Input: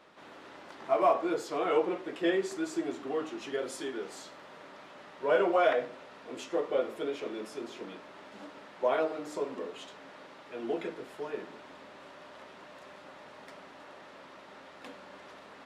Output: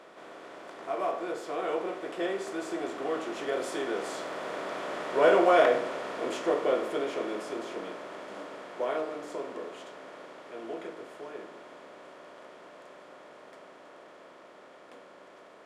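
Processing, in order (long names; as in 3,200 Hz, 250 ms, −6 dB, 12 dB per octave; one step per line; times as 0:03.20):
compressor on every frequency bin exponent 0.6
source passing by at 0:05.29, 6 m/s, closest 8.1 metres
level +2 dB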